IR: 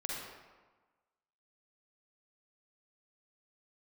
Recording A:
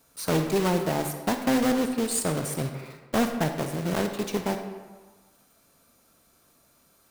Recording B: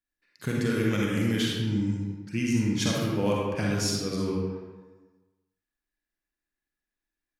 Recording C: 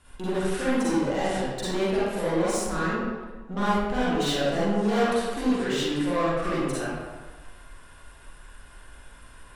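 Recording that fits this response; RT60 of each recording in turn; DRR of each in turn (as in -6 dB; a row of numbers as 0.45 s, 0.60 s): B; 1.3 s, 1.3 s, 1.3 s; 6.0 dB, -4.0 dB, -10.5 dB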